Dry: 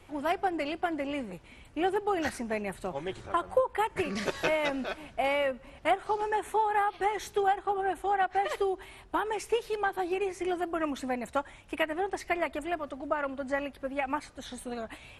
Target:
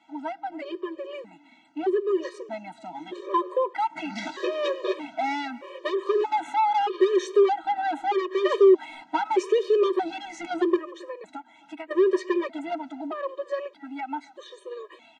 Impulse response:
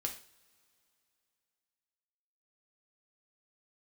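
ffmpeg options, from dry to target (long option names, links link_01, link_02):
-filter_complex "[0:a]asettb=1/sr,asplit=3[link_01][link_02][link_03];[link_01]atrim=end=2.104[link_04];[link_02]atrim=start=2.1:end=3.13,asetpts=PTS-STARTPTS,afade=type=in:duration=0.004:curve=qsin,afade=type=out:start_time=1.026:duration=0.004:curve=qsin,equalizer=frequency=1800:width_type=o:width=1.4:gain=-5.5[link_05];[link_03]atrim=start=3.126[link_06];[link_04][link_05]acrossfade=duration=0.004:curve1=hsin:curve2=qsin[link_07];[link_07][link_06]acrossfade=duration=0.004:curve1=qsin:curve2=hsin,asettb=1/sr,asplit=3[link_08][link_09][link_10];[link_08]atrim=end=10.764[link_11];[link_09]atrim=start=10.76:end=11.91,asetpts=PTS-STARTPTS,afade=type=in:duration=0.004:curve=qsin,afade=type=out:start_time=1.146:duration=0.004:curve=qsin,acompressor=threshold=-44dB:ratio=6[link_12];[link_10]atrim=start=11.906[link_13];[link_11][link_12]acrossfade=duration=0.004:curve1=hsin:curve2=qsin[link_14];[link_14][link_13]acrossfade=duration=0.004:curve1=qsin:curve2=hsin,alimiter=limit=-20.5dB:level=0:latency=1:release=305,dynaudnorm=framelen=650:gausssize=11:maxgain=11.5dB,asoftclip=type=tanh:threshold=-20dB,highpass=frequency=280:width=0.5412,highpass=frequency=280:width=1.3066,equalizer=frequency=370:width_type=q:width=4:gain=10,equalizer=frequency=710:width_type=q:width=4:gain=-4,equalizer=frequency=1000:width_type=q:width=4:gain=5,equalizer=frequency=1500:width_type=q:width=4:gain=-5,equalizer=frequency=2500:width_type=q:width=4:gain=-5,equalizer=frequency=5100:width_type=q:width=4:gain=-7,lowpass=frequency=6000:width=0.5412,lowpass=frequency=6000:width=1.3066,asplit=2[link_15][link_16];[link_16]adelay=270,highpass=300,lowpass=3400,asoftclip=type=hard:threshold=-17dB,volume=-20dB[link_17];[link_15][link_17]amix=inputs=2:normalize=0,afftfilt=real='re*gt(sin(2*PI*0.8*pts/sr)*(1-2*mod(floor(b*sr/1024/320),2)),0)':imag='im*gt(sin(2*PI*0.8*pts/sr)*(1-2*mod(floor(b*sr/1024/320),2)),0)':win_size=1024:overlap=0.75,volume=1.5dB"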